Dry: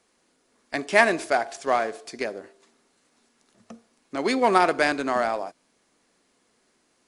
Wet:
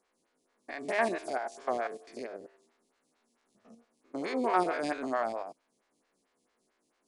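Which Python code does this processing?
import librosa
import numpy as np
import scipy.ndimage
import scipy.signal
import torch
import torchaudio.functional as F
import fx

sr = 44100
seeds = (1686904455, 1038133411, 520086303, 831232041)

y = fx.spec_steps(x, sr, hold_ms=100)
y = fx.stagger_phaser(y, sr, hz=4.5)
y = F.gain(torch.from_numpy(y), -4.5).numpy()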